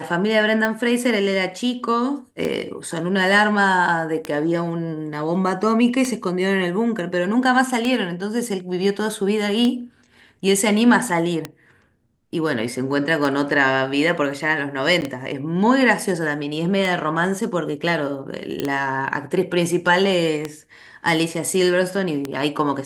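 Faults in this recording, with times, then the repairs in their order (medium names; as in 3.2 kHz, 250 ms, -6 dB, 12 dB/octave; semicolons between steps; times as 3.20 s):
tick 33 1/3 rpm -9 dBFS
15.01–15.02 s: dropout 9.8 ms
18.60 s: pop -10 dBFS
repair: de-click; interpolate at 15.01 s, 9.8 ms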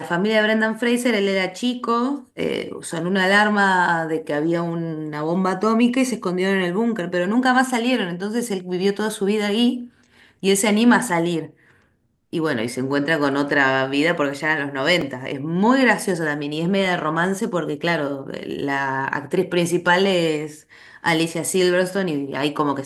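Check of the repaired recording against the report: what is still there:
nothing left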